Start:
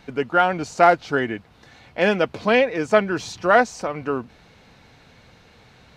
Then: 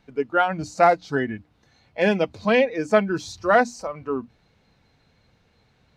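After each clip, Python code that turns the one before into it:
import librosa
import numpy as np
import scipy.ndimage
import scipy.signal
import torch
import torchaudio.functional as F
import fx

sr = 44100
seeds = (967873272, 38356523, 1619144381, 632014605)

y = fx.low_shelf(x, sr, hz=330.0, db=6.0)
y = fx.hum_notches(y, sr, base_hz=60, count=5)
y = fx.noise_reduce_blind(y, sr, reduce_db=11)
y = F.gain(torch.from_numpy(y), -2.5).numpy()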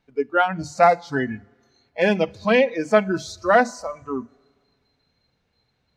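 y = fx.hum_notches(x, sr, base_hz=50, count=4)
y = fx.rev_schroeder(y, sr, rt60_s=1.8, comb_ms=31, drr_db=20.0)
y = fx.noise_reduce_blind(y, sr, reduce_db=10)
y = F.gain(torch.from_numpy(y), 1.5).numpy()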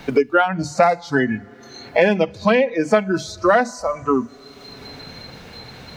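y = fx.band_squash(x, sr, depth_pct=100)
y = F.gain(torch.from_numpy(y), 2.5).numpy()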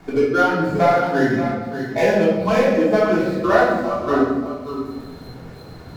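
y = scipy.signal.medfilt(x, 15)
y = y + 10.0 ** (-9.5 / 20.0) * np.pad(y, (int(583 * sr / 1000.0), 0))[:len(y)]
y = fx.room_shoebox(y, sr, seeds[0], volume_m3=540.0, walls='mixed', distance_m=3.3)
y = F.gain(torch.from_numpy(y), -7.5).numpy()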